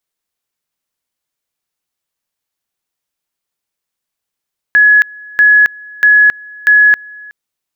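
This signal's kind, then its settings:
tone at two levels in turn 1,690 Hz −3.5 dBFS, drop 25.5 dB, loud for 0.27 s, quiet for 0.37 s, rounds 4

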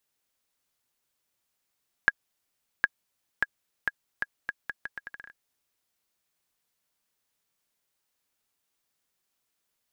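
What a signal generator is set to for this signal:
bouncing ball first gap 0.76 s, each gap 0.77, 1,650 Hz, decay 35 ms −6.5 dBFS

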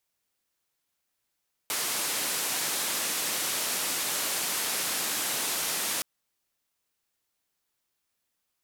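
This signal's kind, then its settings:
band-limited noise 190–13,000 Hz, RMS −30 dBFS 4.32 s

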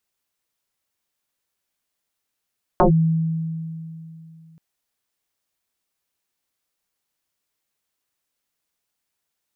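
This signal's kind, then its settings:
two-operator FM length 1.78 s, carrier 162 Hz, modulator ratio 1.13, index 5.9, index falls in 0.11 s linear, decay 2.91 s, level −10 dB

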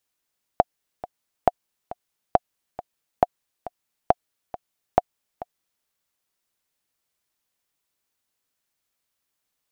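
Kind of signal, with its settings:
click track 137 BPM, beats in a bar 2, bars 6, 717 Hz, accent 17 dB −1.5 dBFS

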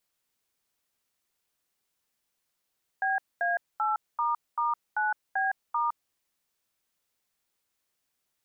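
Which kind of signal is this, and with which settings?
touch tones "BA8**9B*", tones 162 ms, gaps 227 ms, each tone −27 dBFS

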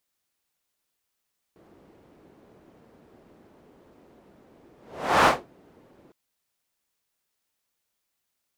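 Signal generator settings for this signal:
pass-by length 4.56 s, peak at 0:03.70, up 0.52 s, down 0.22 s, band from 360 Hz, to 1,000 Hz, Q 1.1, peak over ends 38 dB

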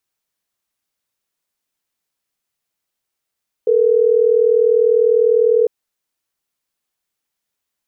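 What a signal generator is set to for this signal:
call progress tone ringback tone, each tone −13 dBFS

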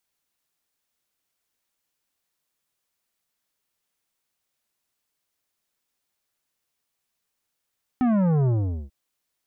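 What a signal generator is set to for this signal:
bass drop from 260 Hz, over 0.89 s, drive 11.5 dB, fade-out 0.43 s, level −19 dB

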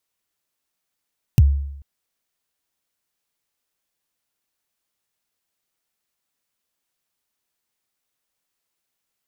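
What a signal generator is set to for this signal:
synth kick length 0.44 s, from 150 Hz, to 70 Hz, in 35 ms, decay 0.81 s, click on, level −6 dB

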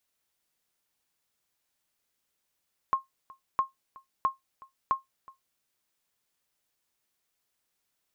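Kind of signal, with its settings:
ping with an echo 1,070 Hz, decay 0.15 s, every 0.66 s, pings 4, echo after 0.37 s, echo −23.5 dB −16.5 dBFS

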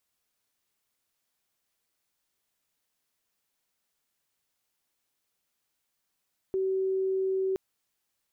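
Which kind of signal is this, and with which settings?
tone sine 381 Hz −25 dBFS 1.02 s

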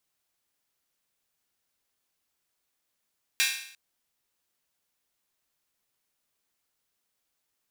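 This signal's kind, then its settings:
open synth hi-hat length 0.35 s, high-pass 2,100 Hz, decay 0.64 s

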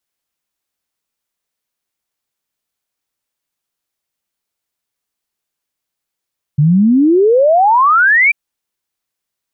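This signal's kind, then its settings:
exponential sine sweep 140 Hz → 2,400 Hz 1.74 s −6.5 dBFS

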